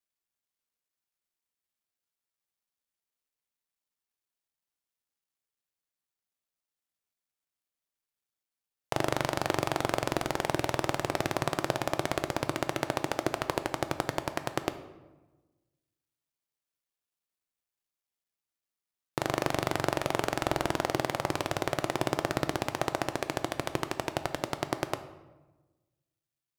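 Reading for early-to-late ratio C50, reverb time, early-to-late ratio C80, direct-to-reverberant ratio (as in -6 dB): 12.0 dB, 1.2 s, 14.0 dB, 9.5 dB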